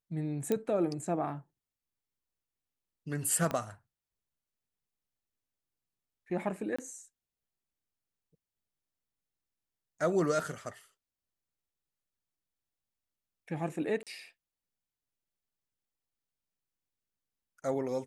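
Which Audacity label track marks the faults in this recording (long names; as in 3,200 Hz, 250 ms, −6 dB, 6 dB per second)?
0.520000	0.520000	click −17 dBFS
3.510000	3.510000	click −20 dBFS
6.760000	6.790000	drop-out 25 ms
14.030000	14.070000	drop-out 37 ms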